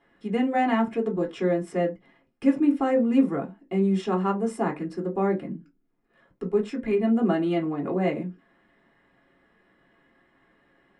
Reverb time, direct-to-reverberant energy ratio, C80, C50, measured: non-exponential decay, −1.0 dB, 24.0 dB, 15.5 dB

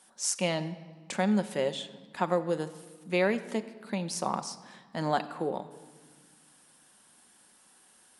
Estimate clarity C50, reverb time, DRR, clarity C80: 14.0 dB, 1.6 s, 9.0 dB, 15.5 dB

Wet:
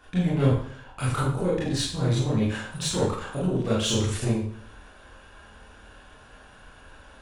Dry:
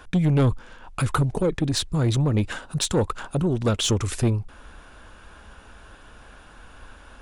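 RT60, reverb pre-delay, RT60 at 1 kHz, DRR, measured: 0.60 s, 23 ms, 0.55 s, −8.5 dB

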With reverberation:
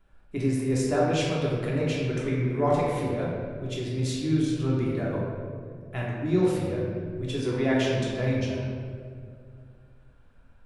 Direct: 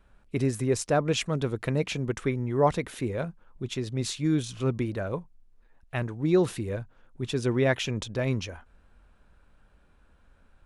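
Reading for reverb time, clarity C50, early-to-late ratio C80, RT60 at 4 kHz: 2.2 s, −1.0 dB, 1.5 dB, 1.1 s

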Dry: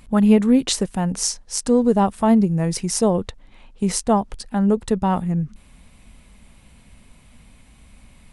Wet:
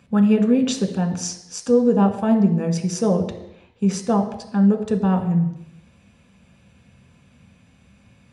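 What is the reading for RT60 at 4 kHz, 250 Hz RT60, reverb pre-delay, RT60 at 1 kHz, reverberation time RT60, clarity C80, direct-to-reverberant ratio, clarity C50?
0.85 s, 0.85 s, 3 ms, 0.85 s, 0.85 s, 12.0 dB, 3.5 dB, 10.0 dB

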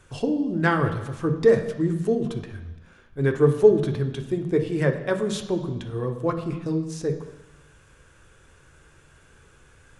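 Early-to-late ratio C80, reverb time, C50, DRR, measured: 11.5 dB, 1.0 s, 9.0 dB, 4.5 dB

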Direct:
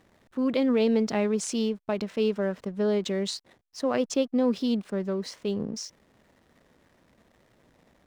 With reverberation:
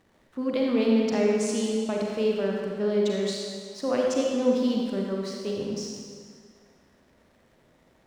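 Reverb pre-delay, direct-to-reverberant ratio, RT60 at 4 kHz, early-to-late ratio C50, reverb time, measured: 35 ms, −1.5 dB, 1.7 s, −0.5 dB, 2.0 s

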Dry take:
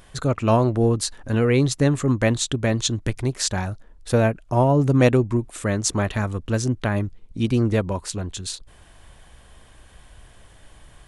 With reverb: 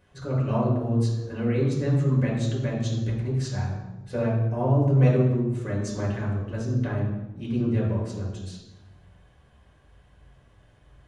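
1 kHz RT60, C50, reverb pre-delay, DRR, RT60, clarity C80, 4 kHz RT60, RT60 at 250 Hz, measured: 0.95 s, 2.5 dB, 3 ms, −6.0 dB, 1.1 s, 5.5 dB, 0.75 s, 1.4 s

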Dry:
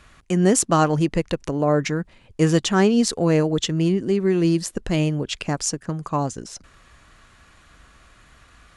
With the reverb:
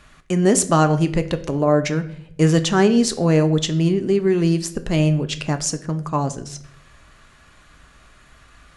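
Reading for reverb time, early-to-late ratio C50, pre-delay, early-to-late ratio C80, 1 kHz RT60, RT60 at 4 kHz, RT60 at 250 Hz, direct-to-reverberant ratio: 0.65 s, 14.5 dB, 3 ms, 18.0 dB, 0.55 s, 0.45 s, 0.95 s, 9.0 dB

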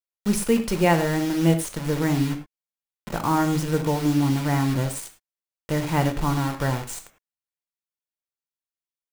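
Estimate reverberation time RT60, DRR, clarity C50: non-exponential decay, 6.0 dB, 10.0 dB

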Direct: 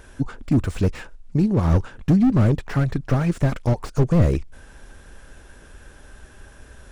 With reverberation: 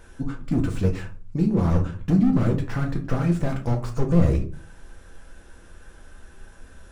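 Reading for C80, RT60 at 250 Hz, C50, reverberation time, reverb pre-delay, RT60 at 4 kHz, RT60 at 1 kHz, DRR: 16.5 dB, 0.55 s, 11.5 dB, 0.40 s, 4 ms, 0.25 s, 0.40 s, 1.5 dB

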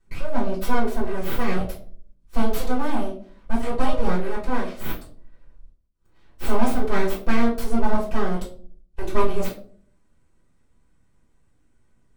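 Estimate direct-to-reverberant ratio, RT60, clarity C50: −7.5 dB, 0.50 s, 8.0 dB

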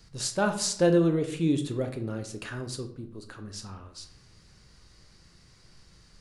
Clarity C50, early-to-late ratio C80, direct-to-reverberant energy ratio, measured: 10.5 dB, 14.0 dB, 6.0 dB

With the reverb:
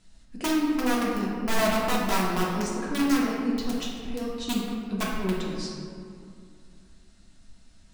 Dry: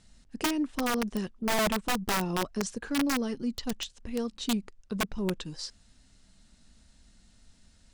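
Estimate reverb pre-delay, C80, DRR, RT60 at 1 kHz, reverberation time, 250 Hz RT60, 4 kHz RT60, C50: 3 ms, 2.0 dB, −5.5 dB, 2.3 s, 2.3 s, 2.8 s, 1.1 s, 0.0 dB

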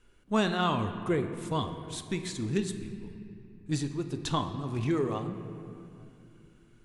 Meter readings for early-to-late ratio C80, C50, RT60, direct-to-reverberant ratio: 9.5 dB, 9.0 dB, 2.5 s, 7.0 dB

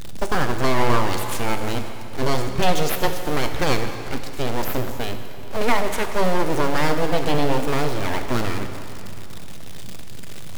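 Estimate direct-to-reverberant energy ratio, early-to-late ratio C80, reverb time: 6.5 dB, 8.0 dB, 2.9 s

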